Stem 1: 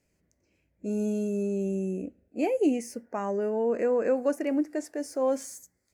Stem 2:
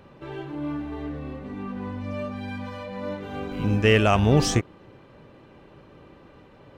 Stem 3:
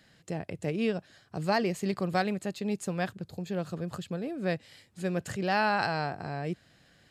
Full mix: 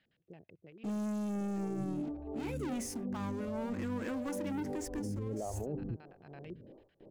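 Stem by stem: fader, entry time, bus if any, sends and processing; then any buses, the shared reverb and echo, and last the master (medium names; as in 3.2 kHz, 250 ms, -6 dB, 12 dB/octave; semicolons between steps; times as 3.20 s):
-17.0 dB, 0.00 s, bus A, no send, high-order bell 560 Hz -13 dB 1 oct; waveshaping leveller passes 5
-1.5 dB, 1.35 s, bus A, no send, inverse Chebyshev low-pass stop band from 3.8 kHz, stop band 80 dB; lamp-driven phase shifter 1.5 Hz
-16.0 dB, 0.00 s, no bus, no send, LFO low-pass square 9 Hz 400–2900 Hz; auto duck -23 dB, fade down 1.60 s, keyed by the first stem
bus A: 0.0 dB, gate with hold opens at -48 dBFS; compression, threshold -30 dBFS, peak gain reduction 11.5 dB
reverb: none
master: peak limiter -30 dBFS, peak gain reduction 8 dB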